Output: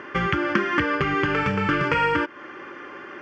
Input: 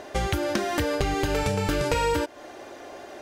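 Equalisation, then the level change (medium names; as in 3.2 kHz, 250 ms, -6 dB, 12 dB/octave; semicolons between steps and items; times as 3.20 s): cabinet simulation 130–4400 Hz, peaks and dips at 170 Hz +7 dB, 350 Hz +4 dB, 590 Hz +6 dB, 1.2 kHz +6 dB, 3.4 kHz +10 dB; peaking EQ 1.7 kHz +5 dB 2.2 oct; static phaser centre 1.6 kHz, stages 4; +3.5 dB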